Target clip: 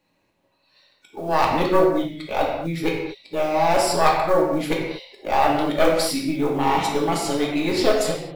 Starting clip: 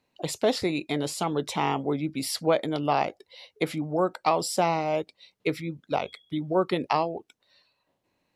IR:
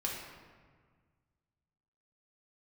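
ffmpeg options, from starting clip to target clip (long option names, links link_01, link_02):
-filter_complex "[0:a]areverse,asubboost=boost=3:cutoff=56,acrusher=bits=7:mode=log:mix=0:aa=0.000001,aeval=exprs='0.355*(cos(1*acos(clip(val(0)/0.355,-1,1)))-cos(1*PI/2))+0.0708*(cos(4*acos(clip(val(0)/0.355,-1,1)))-cos(4*PI/2))+0.0126*(cos(6*acos(clip(val(0)/0.355,-1,1)))-cos(6*PI/2))':channel_layout=same[link_01];[1:a]atrim=start_sample=2205,afade=type=out:start_time=0.3:duration=0.01,atrim=end_sample=13671[link_02];[link_01][link_02]afir=irnorm=-1:irlink=0,volume=4dB"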